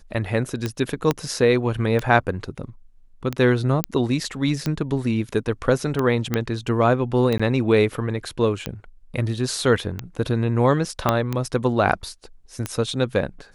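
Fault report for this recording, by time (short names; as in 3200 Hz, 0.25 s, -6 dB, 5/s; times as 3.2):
tick 45 rpm -11 dBFS
1.11 pop -6 dBFS
3.84 pop -4 dBFS
6.34 pop -8 dBFS
7.38–7.39 gap 15 ms
11.09 pop -4 dBFS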